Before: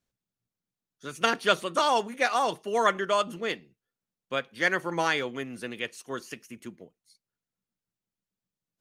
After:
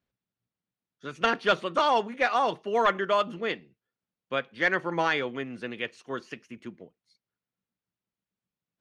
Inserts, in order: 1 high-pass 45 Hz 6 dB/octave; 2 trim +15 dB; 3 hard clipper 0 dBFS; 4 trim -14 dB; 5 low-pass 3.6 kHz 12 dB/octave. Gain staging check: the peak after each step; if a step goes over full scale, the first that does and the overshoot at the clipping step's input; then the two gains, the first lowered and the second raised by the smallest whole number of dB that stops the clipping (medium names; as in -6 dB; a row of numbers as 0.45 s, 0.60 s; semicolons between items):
-7.0 dBFS, +8.0 dBFS, 0.0 dBFS, -14.0 dBFS, -13.5 dBFS; step 2, 8.0 dB; step 2 +7 dB, step 4 -6 dB